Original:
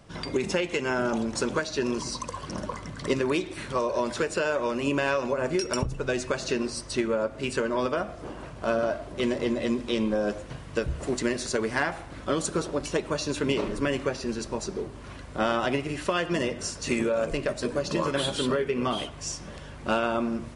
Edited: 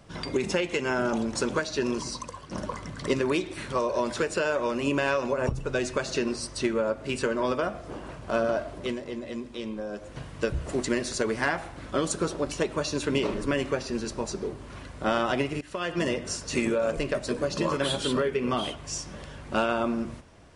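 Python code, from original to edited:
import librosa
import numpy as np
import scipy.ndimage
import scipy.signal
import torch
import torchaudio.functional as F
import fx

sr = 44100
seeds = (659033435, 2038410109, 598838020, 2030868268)

y = fx.edit(x, sr, fx.fade_out_to(start_s=1.79, length_s=0.72, curve='qsin', floor_db=-10.5),
    fx.cut(start_s=5.47, length_s=0.34),
    fx.fade_down_up(start_s=9.13, length_s=1.39, db=-8.5, fade_s=0.18),
    fx.fade_in_from(start_s=15.95, length_s=0.4, floor_db=-19.0), tone=tone)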